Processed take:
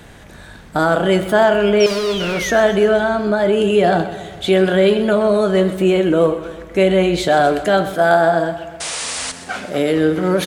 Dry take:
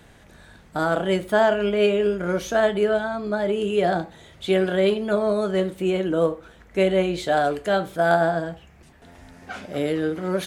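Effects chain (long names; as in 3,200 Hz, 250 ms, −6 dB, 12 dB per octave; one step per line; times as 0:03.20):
0:07.92–0:09.94: low-shelf EQ 130 Hz −10 dB
in parallel at +3 dB: brickwall limiter −18.5 dBFS, peak gain reduction 11.5 dB
0:01.80–0:02.63: on the sum: sound drawn into the spectrogram fall 1,500–5,800 Hz −27 dBFS
0:01.86–0:02.41: hard clipping −20 dBFS, distortion −16 dB
0:08.80–0:09.32: sound drawn into the spectrogram noise 430–10,000 Hz −27 dBFS
on a send: repeating echo 127 ms, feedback 59%, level −14 dB
on the sum: level +2 dB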